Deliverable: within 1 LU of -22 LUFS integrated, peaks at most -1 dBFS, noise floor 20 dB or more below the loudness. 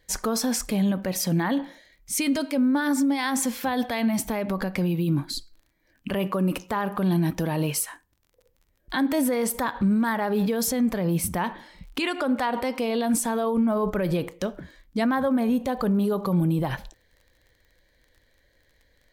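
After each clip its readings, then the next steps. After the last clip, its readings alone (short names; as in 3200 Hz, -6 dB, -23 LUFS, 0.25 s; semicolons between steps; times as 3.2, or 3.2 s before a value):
ticks 24/s; loudness -25.5 LUFS; peak -14.5 dBFS; loudness target -22.0 LUFS
-> de-click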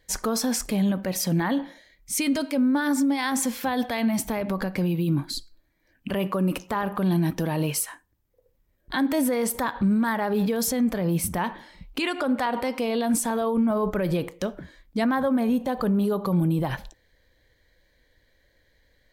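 ticks 0/s; loudness -25.5 LUFS; peak -14.5 dBFS; loudness target -22.0 LUFS
-> gain +3.5 dB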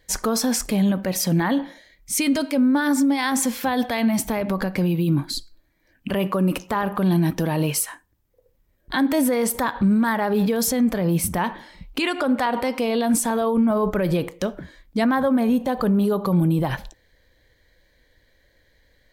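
loudness -22.0 LUFS; peak -11.0 dBFS; noise floor -64 dBFS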